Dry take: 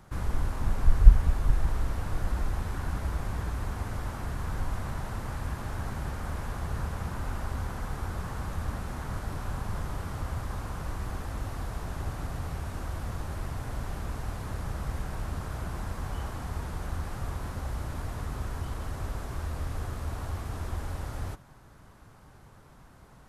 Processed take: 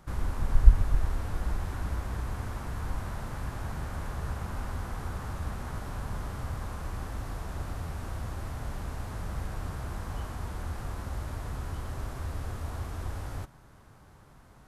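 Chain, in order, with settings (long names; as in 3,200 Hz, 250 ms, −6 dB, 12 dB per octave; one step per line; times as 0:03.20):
phase-vocoder stretch with locked phases 0.63×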